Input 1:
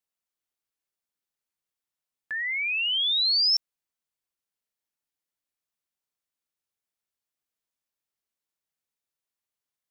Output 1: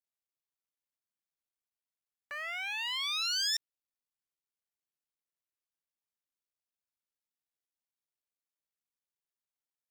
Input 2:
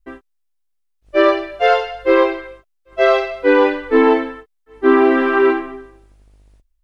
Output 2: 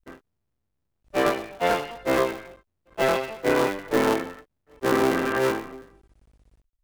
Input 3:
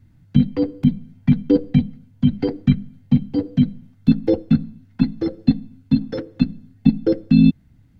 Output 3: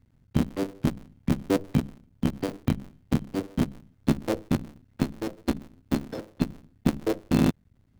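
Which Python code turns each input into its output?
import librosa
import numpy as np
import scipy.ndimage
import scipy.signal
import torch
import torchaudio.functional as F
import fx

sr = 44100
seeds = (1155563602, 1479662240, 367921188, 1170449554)

y = fx.cycle_switch(x, sr, every=3, mode='muted')
y = F.gain(torch.from_numpy(y), -7.5).numpy()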